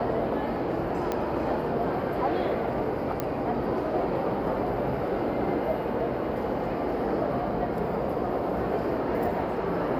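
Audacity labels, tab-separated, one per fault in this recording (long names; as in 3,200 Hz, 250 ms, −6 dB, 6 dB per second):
1.120000	1.120000	click −15 dBFS
3.200000	3.200000	click −14 dBFS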